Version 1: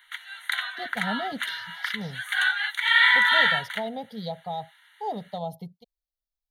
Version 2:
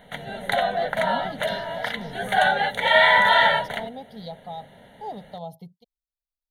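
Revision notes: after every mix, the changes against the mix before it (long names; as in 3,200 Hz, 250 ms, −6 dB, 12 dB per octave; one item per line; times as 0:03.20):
speech −3.5 dB
background: remove Butterworth high-pass 1,100 Hz 48 dB per octave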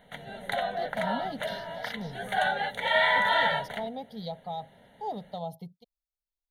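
background −7.5 dB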